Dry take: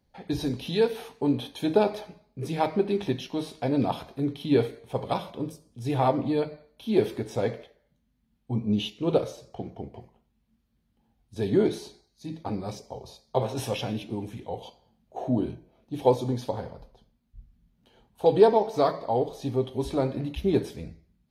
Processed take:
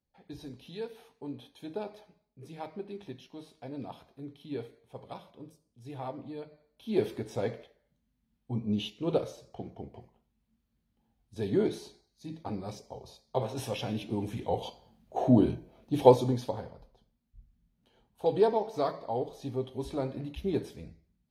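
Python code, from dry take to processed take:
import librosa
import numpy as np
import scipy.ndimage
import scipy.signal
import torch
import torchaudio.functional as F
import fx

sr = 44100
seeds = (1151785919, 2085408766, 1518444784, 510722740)

y = fx.gain(x, sr, db=fx.line((6.47, -15.5), (7.0, -5.0), (13.73, -5.0), (14.5, 4.0), (16.0, 4.0), (16.73, -7.0)))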